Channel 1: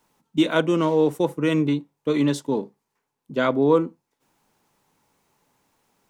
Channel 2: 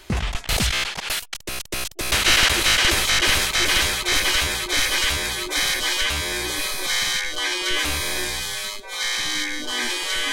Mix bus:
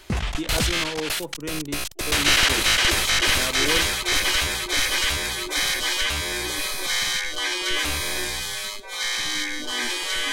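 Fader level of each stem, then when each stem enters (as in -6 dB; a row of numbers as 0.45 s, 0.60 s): -11.5 dB, -1.5 dB; 0.00 s, 0.00 s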